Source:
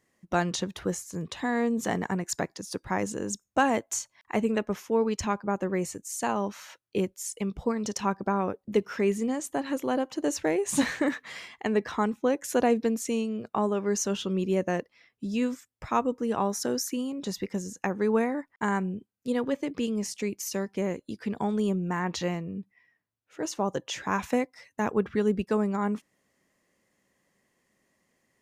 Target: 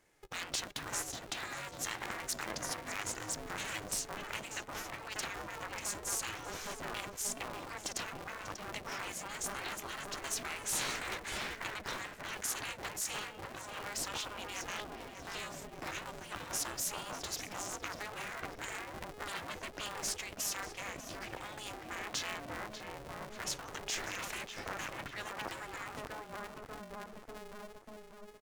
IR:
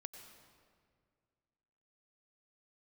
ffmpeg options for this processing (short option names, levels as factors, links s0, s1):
-filter_complex "[0:a]asplit=2[s0][s1];[s1]adelay=591,lowpass=f=2900:p=1,volume=0.335,asplit=2[s2][s3];[s3]adelay=591,lowpass=f=2900:p=1,volume=0.51,asplit=2[s4][s5];[s5]adelay=591,lowpass=f=2900:p=1,volume=0.51,asplit=2[s6][s7];[s7]adelay=591,lowpass=f=2900:p=1,volume=0.51,asplit=2[s8][s9];[s9]adelay=591,lowpass=f=2900:p=1,volume=0.51,asplit=2[s10][s11];[s11]adelay=591,lowpass=f=2900:p=1,volume=0.51[s12];[s0][s2][s4][s6][s8][s10][s12]amix=inputs=7:normalize=0,afftfilt=real='re*lt(hypot(re,im),0.0562)':imag='im*lt(hypot(re,im),0.0562)':win_size=1024:overlap=0.75,aeval=exprs='val(0)*sgn(sin(2*PI*210*n/s))':c=same,volume=1.12"